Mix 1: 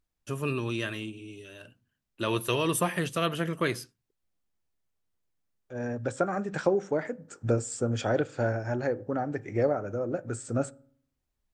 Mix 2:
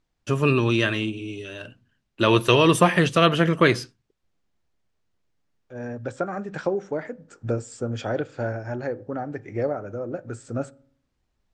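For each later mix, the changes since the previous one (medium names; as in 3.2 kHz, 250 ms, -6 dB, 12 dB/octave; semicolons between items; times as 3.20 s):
first voice +10.5 dB; master: add low-pass 5.9 kHz 12 dB/octave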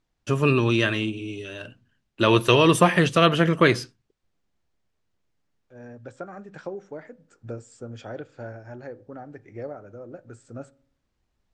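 second voice -9.5 dB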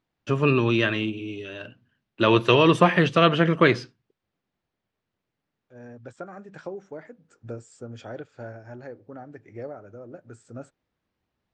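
first voice: add band-pass 100–4100 Hz; reverb: off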